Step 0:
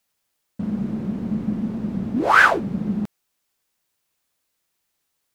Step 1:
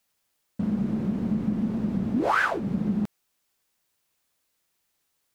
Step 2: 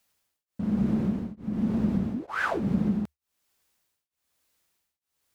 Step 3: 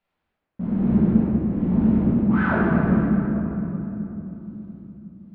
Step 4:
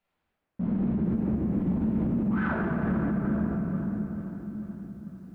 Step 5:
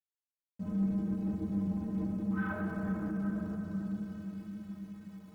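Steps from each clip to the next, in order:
compressor 5:1, threshold -21 dBFS, peak gain reduction 11.5 dB
bell 72 Hz +10 dB 0.26 oct; beating tremolo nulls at 1.1 Hz; gain +2 dB
air absorption 480 m; reverb RT60 3.5 s, pre-delay 5 ms, DRR -7 dB
compressor 2.5:1, threshold -19 dBFS, peak gain reduction 5.5 dB; limiter -18.5 dBFS, peak gain reduction 8 dB; lo-fi delay 0.444 s, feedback 55%, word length 10-bit, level -12.5 dB; gain -1.5 dB
sample gate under -47 dBFS; metallic resonator 93 Hz, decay 0.26 s, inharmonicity 0.03

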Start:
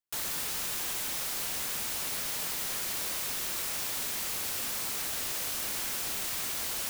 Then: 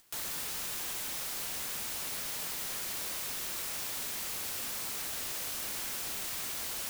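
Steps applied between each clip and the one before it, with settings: upward compressor, threshold -37 dBFS; gain -3.5 dB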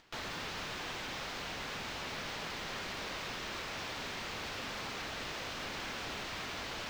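air absorption 210 m; in parallel at +2.5 dB: limiter -43.5 dBFS, peak gain reduction 10 dB; on the sum: gain +1 dB

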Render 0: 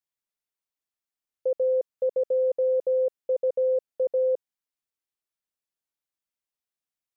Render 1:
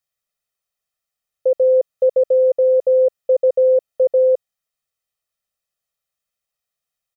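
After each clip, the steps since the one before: comb 1.6 ms, depth 73%; in parallel at +1 dB: vocal rider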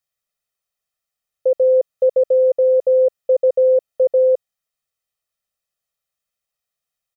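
nothing audible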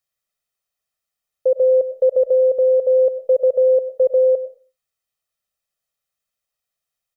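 reverb RT60 0.35 s, pre-delay 65 ms, DRR 14.5 dB

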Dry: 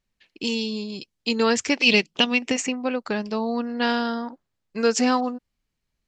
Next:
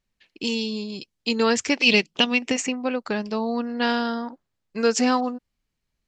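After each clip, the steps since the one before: nothing audible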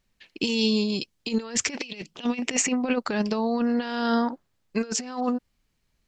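negative-ratio compressor -27 dBFS, ratio -0.5; gain +2 dB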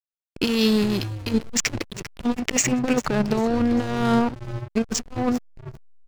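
frequency-shifting echo 0.397 s, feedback 35%, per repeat -110 Hz, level -10.5 dB; backlash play -24.5 dBFS; gain +4.5 dB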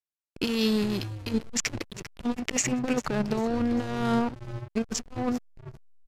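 downsampling 32000 Hz; gain -5.5 dB

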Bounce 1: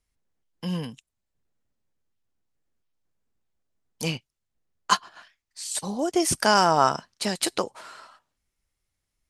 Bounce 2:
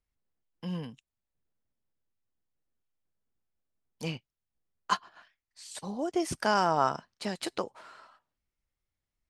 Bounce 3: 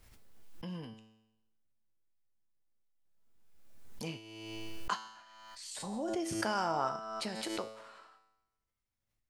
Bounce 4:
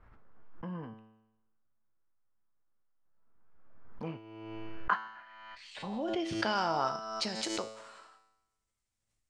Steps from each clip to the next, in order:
high shelf 5200 Hz -12 dB; gain -6 dB
in parallel at -3 dB: compressor, threshold -36 dBFS, peak gain reduction 15.5 dB; on the sum: resonator 110 Hz, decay 0.92 s, harmonics all, mix 80%; backwards sustainer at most 31 dB/s; gain +2.5 dB
low-pass sweep 1300 Hz -> 8200 Hz, 4.44–7.91; gain +1.5 dB

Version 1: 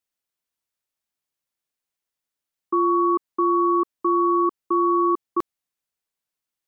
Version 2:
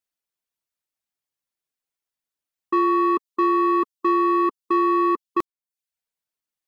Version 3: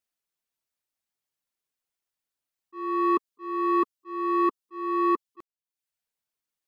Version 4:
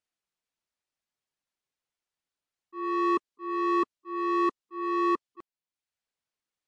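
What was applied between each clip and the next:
reverb removal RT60 0.5 s; sample leveller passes 1
auto swell 0.514 s
in parallel at -3 dB: overloaded stage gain 30 dB; on the sum: air absorption 55 m; gain -3.5 dB; MP3 96 kbps 24000 Hz

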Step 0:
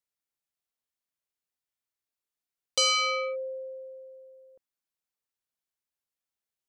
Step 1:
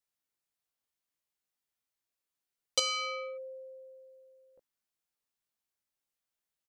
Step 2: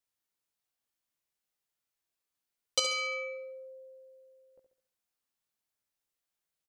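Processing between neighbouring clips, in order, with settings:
doubler 18 ms -3 dB; gain -1 dB
feedback echo 69 ms, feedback 42%, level -7.5 dB

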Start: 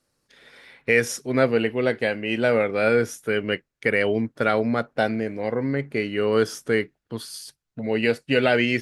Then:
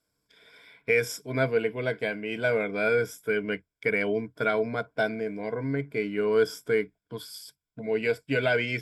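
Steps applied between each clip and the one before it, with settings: ripple EQ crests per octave 1.7, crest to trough 12 dB; gain -7 dB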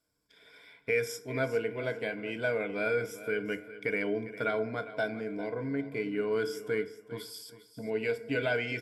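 in parallel at -2 dB: compressor, threshold -34 dBFS, peak gain reduction 15 dB; on the sum: feedback echo 0.402 s, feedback 26%, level -15 dB; FDN reverb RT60 0.81 s, low-frequency decay 0.85×, high-frequency decay 0.5×, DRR 11 dB; gain -7.5 dB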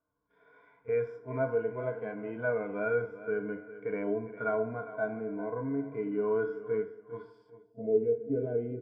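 low-pass sweep 1100 Hz -> 400 Hz, 7.42–8.05; harmonic-percussive split percussive -16 dB; pre-echo 33 ms -19 dB

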